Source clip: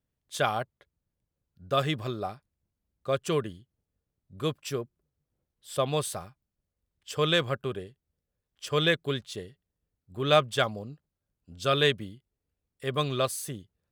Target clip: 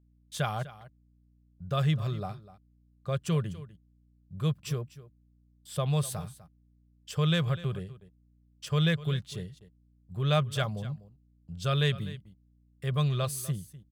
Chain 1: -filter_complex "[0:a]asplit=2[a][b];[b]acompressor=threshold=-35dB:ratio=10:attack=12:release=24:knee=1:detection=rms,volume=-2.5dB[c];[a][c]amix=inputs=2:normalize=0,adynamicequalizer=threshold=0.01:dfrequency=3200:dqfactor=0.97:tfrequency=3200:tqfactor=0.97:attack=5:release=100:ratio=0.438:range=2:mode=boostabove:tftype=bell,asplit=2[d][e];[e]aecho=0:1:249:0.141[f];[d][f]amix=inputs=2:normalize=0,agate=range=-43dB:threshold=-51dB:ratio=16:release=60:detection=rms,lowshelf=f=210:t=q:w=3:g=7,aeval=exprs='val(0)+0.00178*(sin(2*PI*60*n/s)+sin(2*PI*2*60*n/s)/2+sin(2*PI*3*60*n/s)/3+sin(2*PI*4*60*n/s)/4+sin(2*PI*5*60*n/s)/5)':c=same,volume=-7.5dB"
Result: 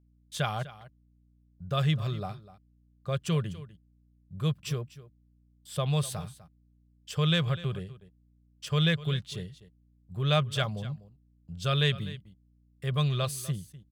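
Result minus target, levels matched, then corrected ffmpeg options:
4000 Hz band +3.0 dB
-filter_complex "[0:a]asplit=2[a][b];[b]acompressor=threshold=-35dB:ratio=10:attack=12:release=24:knee=1:detection=rms,volume=-2.5dB[c];[a][c]amix=inputs=2:normalize=0,adynamicequalizer=threshold=0.01:dfrequency=13000:dqfactor=0.97:tfrequency=13000:tqfactor=0.97:attack=5:release=100:ratio=0.438:range=2:mode=boostabove:tftype=bell,asplit=2[d][e];[e]aecho=0:1:249:0.141[f];[d][f]amix=inputs=2:normalize=0,agate=range=-43dB:threshold=-51dB:ratio=16:release=60:detection=rms,lowshelf=f=210:t=q:w=3:g=7,aeval=exprs='val(0)+0.00178*(sin(2*PI*60*n/s)+sin(2*PI*2*60*n/s)/2+sin(2*PI*3*60*n/s)/3+sin(2*PI*4*60*n/s)/4+sin(2*PI*5*60*n/s)/5)':c=same,volume=-7.5dB"

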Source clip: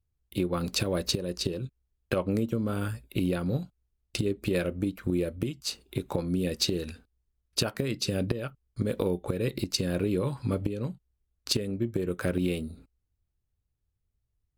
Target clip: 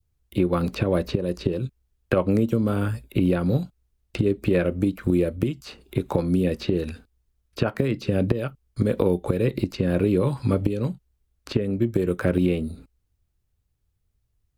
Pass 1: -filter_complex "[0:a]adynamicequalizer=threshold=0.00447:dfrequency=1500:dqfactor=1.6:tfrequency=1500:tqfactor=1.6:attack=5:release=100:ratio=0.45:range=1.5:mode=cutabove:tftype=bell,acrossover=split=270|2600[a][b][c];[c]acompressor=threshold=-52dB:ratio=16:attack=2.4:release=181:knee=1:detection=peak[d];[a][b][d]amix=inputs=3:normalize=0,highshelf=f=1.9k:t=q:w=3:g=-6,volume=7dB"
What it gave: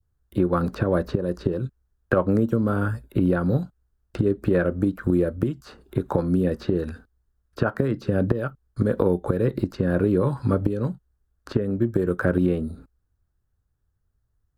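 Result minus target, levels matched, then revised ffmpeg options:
4000 Hz band -8.0 dB
-filter_complex "[0:a]adynamicequalizer=threshold=0.00447:dfrequency=1500:dqfactor=1.6:tfrequency=1500:tqfactor=1.6:attack=5:release=100:ratio=0.45:range=1.5:mode=cutabove:tftype=bell,acrossover=split=270|2600[a][b][c];[c]acompressor=threshold=-52dB:ratio=16:attack=2.4:release=181:knee=1:detection=peak[d];[a][b][d]amix=inputs=3:normalize=0,volume=7dB"

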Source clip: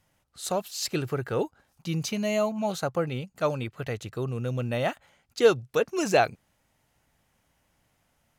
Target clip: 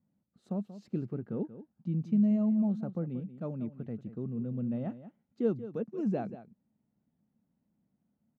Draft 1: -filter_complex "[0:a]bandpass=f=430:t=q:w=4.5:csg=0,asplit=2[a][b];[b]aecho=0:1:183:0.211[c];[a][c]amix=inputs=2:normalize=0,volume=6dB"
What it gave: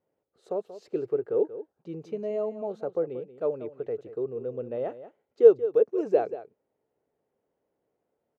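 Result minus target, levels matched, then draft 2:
250 Hz band -13.5 dB
-filter_complex "[0:a]bandpass=f=210:t=q:w=4.5:csg=0,asplit=2[a][b];[b]aecho=0:1:183:0.211[c];[a][c]amix=inputs=2:normalize=0,volume=6dB"

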